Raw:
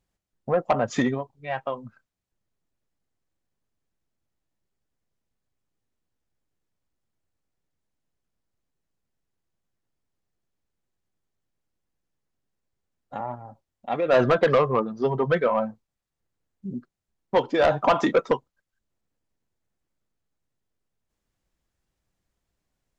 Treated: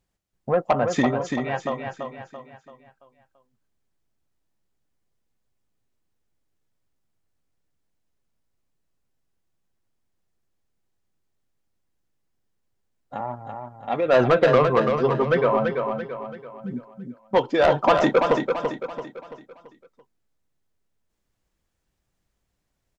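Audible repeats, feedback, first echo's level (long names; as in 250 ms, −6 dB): 5, 43%, −5.5 dB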